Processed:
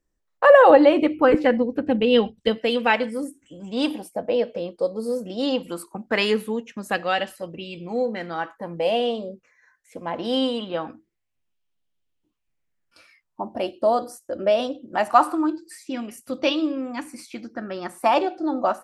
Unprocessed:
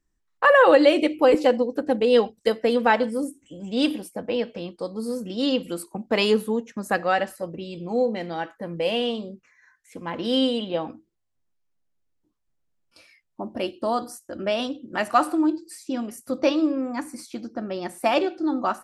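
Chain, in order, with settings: 0.7–2.58 tone controls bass +12 dB, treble -11 dB; LFO bell 0.21 Hz 530–3200 Hz +11 dB; gain -2 dB

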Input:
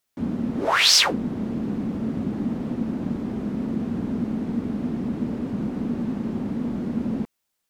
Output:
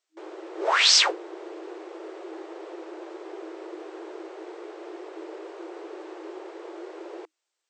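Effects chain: FFT band-pass 320–8500 Hz; gain -1.5 dB

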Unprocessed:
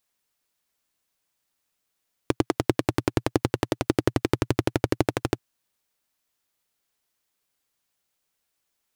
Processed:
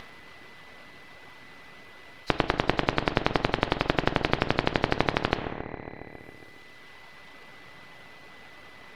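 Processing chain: nonlinear frequency compression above 3800 Hz 1.5:1; reverb removal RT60 1.6 s; upward compressor, threshold -38 dBFS; on a send: dark delay 0.137 s, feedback 61%, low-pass 610 Hz, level -11 dB; on the sum: whine 2000 Hz -58 dBFS; half-wave rectifier; air absorption 360 m; non-linear reverb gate 0.3 s falling, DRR 11.5 dB; spectral compressor 2:1; gain +5 dB

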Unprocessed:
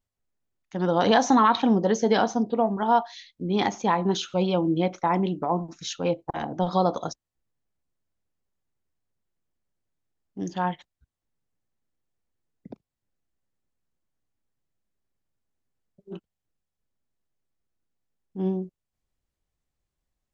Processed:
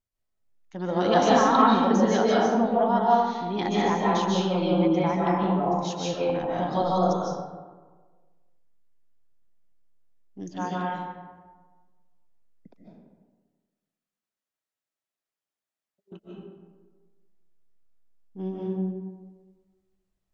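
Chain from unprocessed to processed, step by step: 12.7–16.12 HPF 1300 Hz 6 dB/oct; digital reverb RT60 1.4 s, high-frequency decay 0.5×, pre-delay 0.11 s, DRR -6 dB; gain -6 dB

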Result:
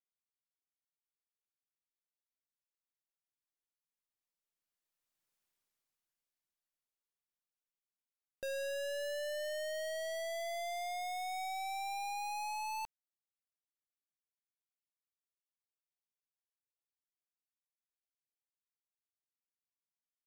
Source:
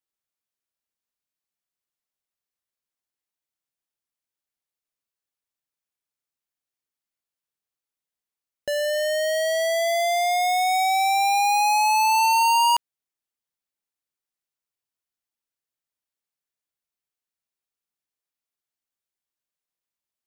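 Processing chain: half-wave gain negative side -3 dB; Doppler pass-by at 5.42, 28 m/s, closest 11 m; gain +4.5 dB

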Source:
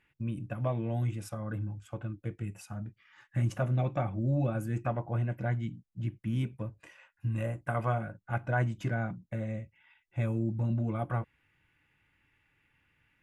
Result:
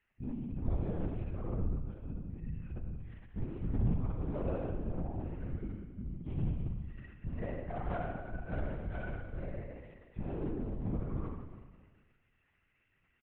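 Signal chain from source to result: median-filter separation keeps harmonic; overloaded stage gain 28 dB; doubler 17 ms -12 dB; spring tank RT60 1.5 s, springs 47 ms, chirp 50 ms, DRR -3 dB; LPC vocoder at 8 kHz whisper; gain -6.5 dB

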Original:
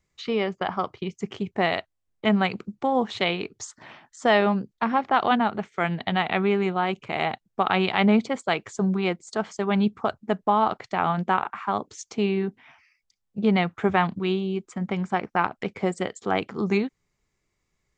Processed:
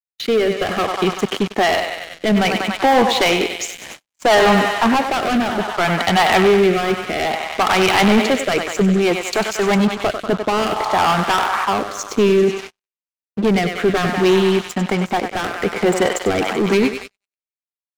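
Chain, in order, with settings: HPF 250 Hz 12 dB/oct; on a send: thinning echo 96 ms, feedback 76%, high-pass 470 Hz, level -10.5 dB; on the sum: sample leveller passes 5; gate -27 dBFS, range -39 dB; rotary speaker horn 0.6 Hz, later 8 Hz, at 16.02; gain -1 dB

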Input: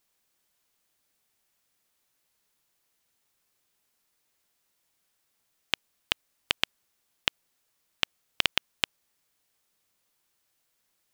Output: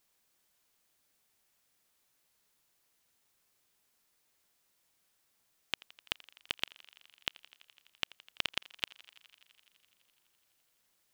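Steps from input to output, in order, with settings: limiter -10 dBFS, peak gain reduction 8.5 dB; thinning echo 84 ms, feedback 85%, high-pass 370 Hz, level -22 dB

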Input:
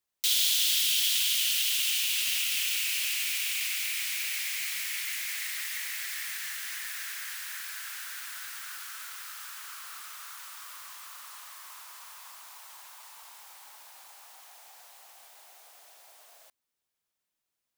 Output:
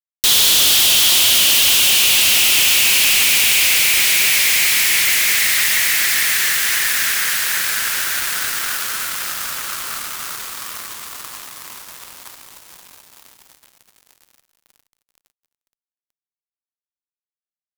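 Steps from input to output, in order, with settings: fuzz box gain 36 dB, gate -43 dBFS; gain +2.5 dB

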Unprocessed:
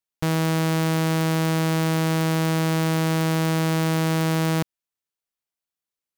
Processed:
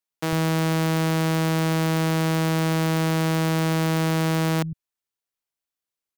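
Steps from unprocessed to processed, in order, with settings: tracing distortion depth 0.46 ms; bands offset in time highs, lows 0.1 s, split 160 Hz

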